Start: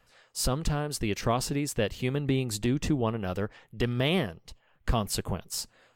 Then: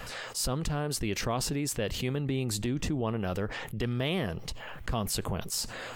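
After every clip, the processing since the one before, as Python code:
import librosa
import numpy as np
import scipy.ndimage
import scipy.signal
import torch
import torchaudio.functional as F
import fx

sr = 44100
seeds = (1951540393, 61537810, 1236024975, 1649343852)

y = fx.env_flatten(x, sr, amount_pct=70)
y = y * 10.0 ** (-7.0 / 20.0)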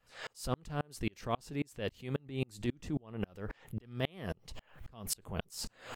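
y = fx.tremolo_decay(x, sr, direction='swelling', hz=3.7, depth_db=37)
y = y * 10.0 ** (1.5 / 20.0)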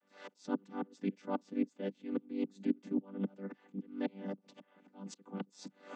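y = fx.chord_vocoder(x, sr, chord='major triad', root=55)
y = y * 10.0 ** (1.0 / 20.0)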